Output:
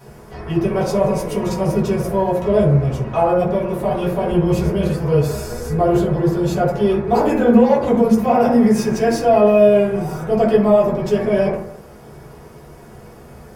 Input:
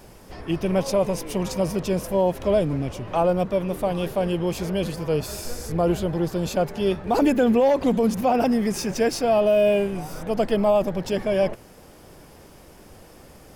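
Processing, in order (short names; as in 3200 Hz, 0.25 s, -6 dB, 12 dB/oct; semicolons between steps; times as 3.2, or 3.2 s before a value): 4.24–4.73 low shelf 160 Hz +8.5 dB; in parallel at -10.5 dB: soft clip -21.5 dBFS, distortion -10 dB; on the sum: reverb RT60 0.75 s, pre-delay 3 ms, DRR -10 dB; gain -6.5 dB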